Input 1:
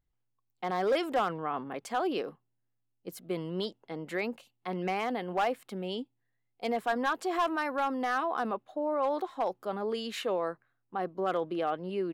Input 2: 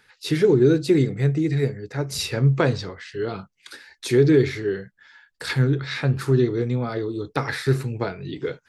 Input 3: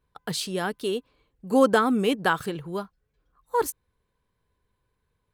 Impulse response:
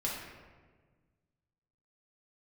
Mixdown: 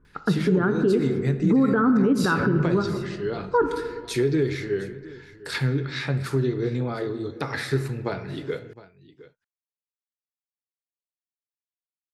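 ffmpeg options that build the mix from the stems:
-filter_complex "[1:a]acompressor=threshold=0.141:ratio=6,adelay=50,volume=0.668,asplit=3[s0][s1][s2];[s1]volume=0.266[s3];[s2]volume=0.141[s4];[2:a]lowshelf=f=480:t=q:w=1.5:g=12.5,acompressor=threshold=0.224:ratio=6,lowpass=f=1400:t=q:w=4.3,volume=1,asplit=2[s5][s6];[s6]volume=0.376[s7];[3:a]atrim=start_sample=2205[s8];[s3][s7]amix=inputs=2:normalize=0[s9];[s9][s8]afir=irnorm=-1:irlink=0[s10];[s4]aecho=0:1:711:1[s11];[s0][s5][s10][s11]amix=inputs=4:normalize=0,alimiter=limit=0.251:level=0:latency=1:release=139"

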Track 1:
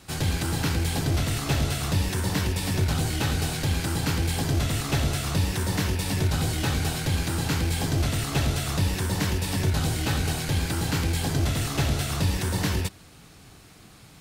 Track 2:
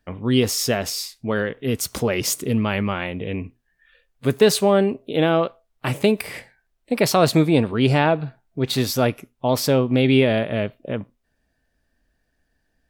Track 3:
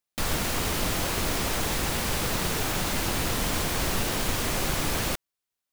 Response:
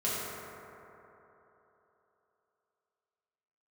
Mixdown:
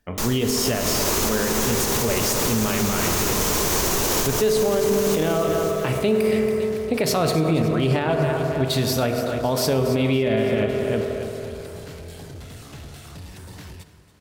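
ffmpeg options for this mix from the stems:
-filter_complex "[0:a]asoftclip=type=tanh:threshold=0.0794,adelay=950,volume=0.237,asplit=3[s0][s1][s2];[s1]volume=0.112[s3];[s2]volume=0.178[s4];[1:a]volume=0.841,asplit=4[s5][s6][s7][s8];[s6]volume=0.316[s9];[s7]volume=0.335[s10];[2:a]equalizer=f=400:t=o:w=0.67:g=9,equalizer=f=1000:t=o:w=0.67:g=5,equalizer=f=6300:t=o:w=0.67:g=9,equalizer=f=16000:t=o:w=0.67:g=10,dynaudnorm=f=180:g=9:m=3.76,volume=0.794,asplit=3[s11][s12][s13];[s12]volume=0.0891[s14];[s13]volume=0.299[s15];[s8]apad=whole_len=252550[s16];[s11][s16]sidechaincompress=threshold=0.0708:ratio=8:attack=7.7:release=616[s17];[3:a]atrim=start_sample=2205[s18];[s3][s9][s14]amix=inputs=3:normalize=0[s19];[s19][s18]afir=irnorm=-1:irlink=0[s20];[s4][s10][s15]amix=inputs=3:normalize=0,aecho=0:1:280|560|840|1120|1400|1680|1960:1|0.49|0.24|0.118|0.0576|0.0282|0.0138[s21];[s0][s5][s17][s20][s21]amix=inputs=5:normalize=0,alimiter=limit=0.266:level=0:latency=1:release=97"

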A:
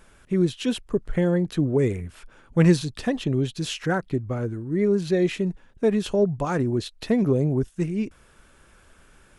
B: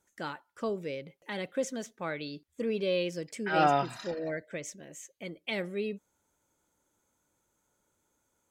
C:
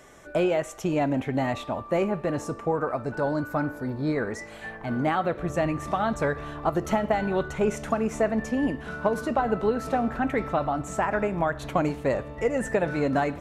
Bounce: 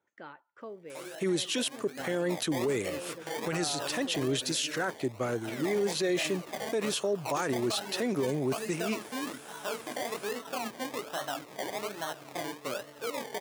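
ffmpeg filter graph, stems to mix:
-filter_complex "[0:a]highshelf=f=3000:g=12,adelay=900,volume=1.12[s0];[1:a]acompressor=threshold=0.00282:ratio=1.5,lowpass=2500,volume=0.841[s1];[2:a]flanger=delay=19.5:depth=5.9:speed=3,acrusher=samples=26:mix=1:aa=0.000001:lfo=1:lforange=15.6:lforate=1.2,adelay=600,volume=0.596,afade=t=in:st=1.59:d=0.74:silence=0.251189[s2];[s0][s2]amix=inputs=2:normalize=0,highpass=f=280:p=1,alimiter=limit=0.168:level=0:latency=1:release=369,volume=1[s3];[s1][s3]amix=inputs=2:normalize=0,highpass=f=110:w=0.5412,highpass=f=110:w=1.3066,equalizer=f=180:w=1.5:g=-6.5,alimiter=limit=0.0841:level=0:latency=1:release=12"

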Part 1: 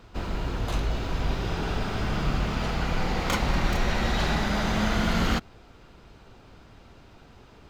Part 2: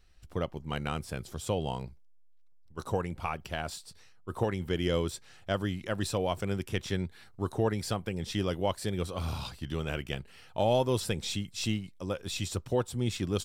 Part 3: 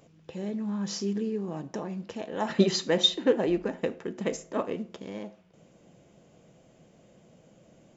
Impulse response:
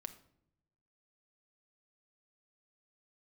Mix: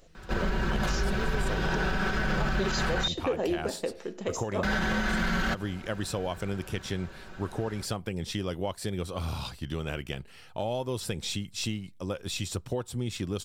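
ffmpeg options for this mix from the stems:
-filter_complex "[0:a]equalizer=f=1600:t=o:w=0.27:g=13,aecho=1:1:5.3:0.68,adelay=150,volume=1.19,asplit=3[s0][s1][s2];[s0]atrim=end=3.08,asetpts=PTS-STARTPTS,afade=t=out:st=3.076:d=0.004:c=hsin[s3];[s1]atrim=start=3.08:end=4.63,asetpts=PTS-STARTPTS,volume=0[s4];[s2]atrim=start=4.63,asetpts=PTS-STARTPTS,afade=t=in:d=0.004:c=hsin[s5];[s3][s4][s5]concat=n=3:v=0:a=1[s6];[1:a]acompressor=threshold=0.0316:ratio=6,volume=1.26,asplit=2[s7][s8];[s8]volume=0.075[s9];[2:a]equalizer=f=125:t=o:w=1:g=-11,equalizer=f=250:t=o:w=1:g=-6,equalizer=f=1000:t=o:w=1:g=-4,equalizer=f=2000:t=o:w=1:g=-5,volume=1,asplit=2[s10][s11];[s11]volume=0.531[s12];[3:a]atrim=start_sample=2205[s13];[s9][s12]amix=inputs=2:normalize=0[s14];[s14][s13]afir=irnorm=-1:irlink=0[s15];[s6][s7][s10][s15]amix=inputs=4:normalize=0,alimiter=limit=0.112:level=0:latency=1:release=65"

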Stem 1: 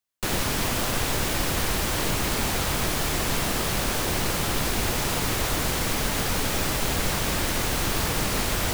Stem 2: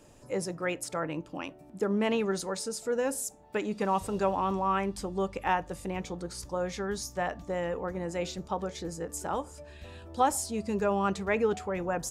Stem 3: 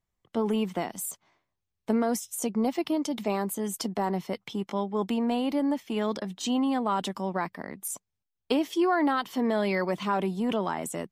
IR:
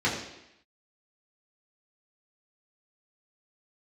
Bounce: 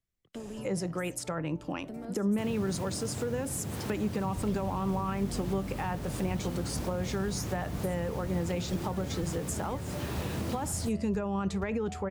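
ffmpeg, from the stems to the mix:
-filter_complex "[0:a]highpass=f=89:w=0.5412,highpass=f=89:w=1.3066,tiltshelf=f=710:g=6.5,adelay=2150,volume=0.335[s0];[1:a]adelay=350,volume=1.12[s1];[2:a]equalizer=f=930:w=1.7:g=-11,acompressor=threshold=0.0158:ratio=6,volume=0.316[s2];[s1][s2]amix=inputs=2:normalize=0,acontrast=63,alimiter=limit=0.168:level=0:latency=1:release=31,volume=1[s3];[s0][s3]amix=inputs=2:normalize=0,acrossover=split=190[s4][s5];[s5]acompressor=threshold=0.02:ratio=4[s6];[s4][s6]amix=inputs=2:normalize=0"

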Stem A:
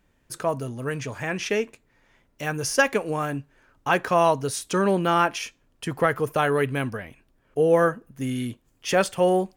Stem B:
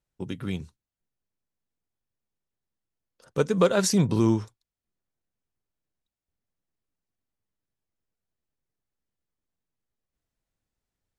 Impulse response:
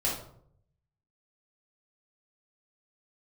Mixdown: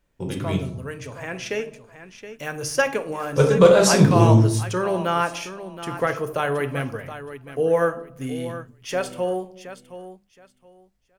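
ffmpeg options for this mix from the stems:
-filter_complex "[0:a]bandreject=f=50:t=h:w=6,bandreject=f=100:t=h:w=6,bandreject=f=150:t=h:w=6,bandreject=f=200:t=h:w=6,dynaudnorm=f=290:g=9:m=2,volume=0.422,asplit=3[s0][s1][s2];[s1]volume=0.178[s3];[s2]volume=0.282[s4];[1:a]volume=0.944,asplit=2[s5][s6];[s6]volume=0.708[s7];[2:a]atrim=start_sample=2205[s8];[s3][s7]amix=inputs=2:normalize=0[s9];[s9][s8]afir=irnorm=-1:irlink=0[s10];[s4]aecho=0:1:721|1442|2163:1|0.21|0.0441[s11];[s0][s5][s10][s11]amix=inputs=4:normalize=0"

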